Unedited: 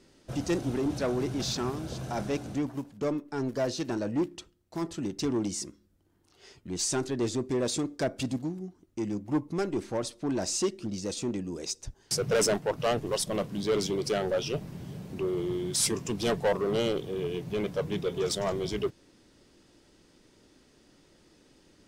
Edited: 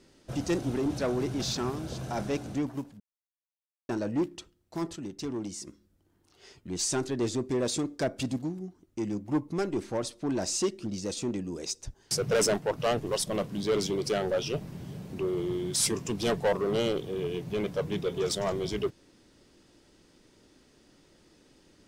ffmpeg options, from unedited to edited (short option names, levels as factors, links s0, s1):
-filter_complex "[0:a]asplit=5[s0][s1][s2][s3][s4];[s0]atrim=end=3,asetpts=PTS-STARTPTS,afade=t=out:st=2.996:d=0.004:c=hsin[s5];[s1]atrim=start=3:end=3.89,asetpts=PTS-STARTPTS,volume=0[s6];[s2]atrim=start=3.89:end=4.962,asetpts=PTS-STARTPTS,afade=t=in:d=0.004:c=hsin[s7];[s3]atrim=start=4.958:end=5.672,asetpts=PTS-STARTPTS,volume=0.531[s8];[s4]atrim=start=5.668[s9];[s5][s6][s7]concat=n=3:v=0:a=1[s10];[s10][s8]acrossfade=d=0.004:c1=hsin:c2=hsin[s11];[s11][s9]acrossfade=d=0.004:c1=hsin:c2=hsin"